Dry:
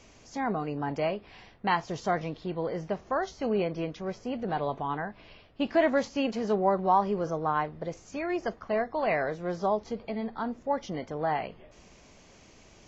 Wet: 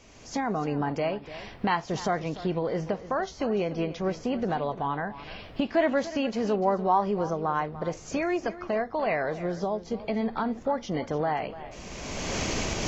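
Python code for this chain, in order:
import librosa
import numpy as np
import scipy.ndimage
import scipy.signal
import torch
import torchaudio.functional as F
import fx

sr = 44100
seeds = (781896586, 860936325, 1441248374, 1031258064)

p1 = fx.recorder_agc(x, sr, target_db=-20.0, rise_db_per_s=26.0, max_gain_db=30)
p2 = fx.dynamic_eq(p1, sr, hz=1400.0, q=0.75, threshold_db=-42.0, ratio=4.0, max_db=-8, at=(9.32, 9.94))
y = p2 + fx.echo_single(p2, sr, ms=294, db=-15.0, dry=0)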